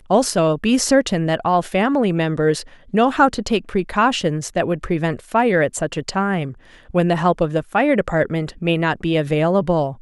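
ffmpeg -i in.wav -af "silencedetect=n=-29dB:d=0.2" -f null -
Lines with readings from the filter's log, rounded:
silence_start: 2.62
silence_end: 2.94 | silence_duration: 0.32
silence_start: 6.52
silence_end: 6.90 | silence_duration: 0.38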